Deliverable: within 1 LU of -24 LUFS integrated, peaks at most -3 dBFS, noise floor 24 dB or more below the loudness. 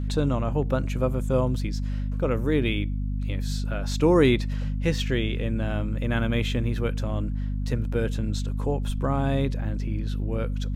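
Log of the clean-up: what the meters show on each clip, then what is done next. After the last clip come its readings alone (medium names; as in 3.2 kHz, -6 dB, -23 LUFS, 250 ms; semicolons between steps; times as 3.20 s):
hum 50 Hz; highest harmonic 250 Hz; hum level -25 dBFS; loudness -26.5 LUFS; peak level -7.5 dBFS; loudness target -24.0 LUFS
-> de-hum 50 Hz, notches 5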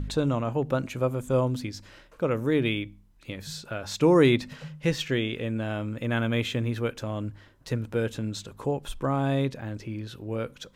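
hum not found; loudness -28.0 LUFS; peak level -9.0 dBFS; loudness target -24.0 LUFS
-> trim +4 dB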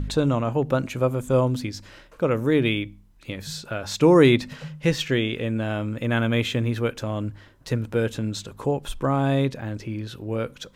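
loudness -24.0 LUFS; peak level -5.0 dBFS; noise floor -52 dBFS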